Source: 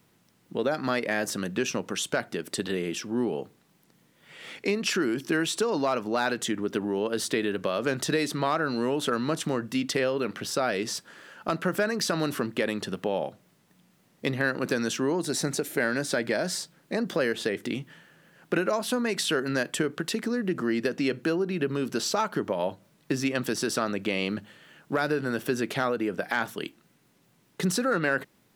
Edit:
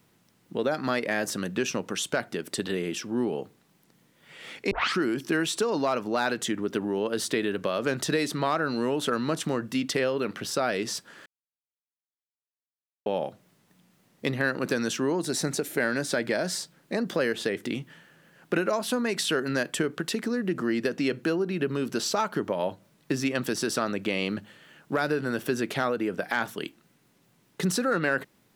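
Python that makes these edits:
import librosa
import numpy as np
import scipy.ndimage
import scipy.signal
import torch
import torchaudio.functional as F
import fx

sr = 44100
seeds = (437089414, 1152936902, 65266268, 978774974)

y = fx.edit(x, sr, fx.tape_start(start_s=4.71, length_s=0.28),
    fx.silence(start_s=11.26, length_s=1.8), tone=tone)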